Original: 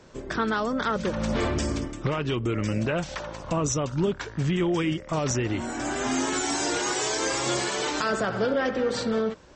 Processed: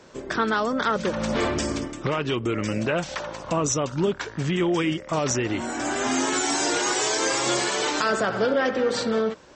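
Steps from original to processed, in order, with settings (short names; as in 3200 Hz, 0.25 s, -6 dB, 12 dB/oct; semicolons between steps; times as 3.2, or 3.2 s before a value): low shelf 120 Hz -12 dB; gain +3.5 dB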